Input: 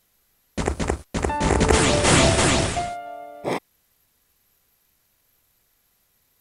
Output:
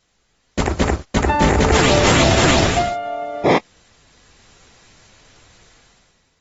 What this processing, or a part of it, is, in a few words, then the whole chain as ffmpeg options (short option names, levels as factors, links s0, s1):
low-bitrate web radio: -af "dynaudnorm=f=140:g=9:m=5.62,alimiter=limit=0.355:level=0:latency=1:release=28,volume=1.5" -ar 44100 -c:a aac -b:a 24k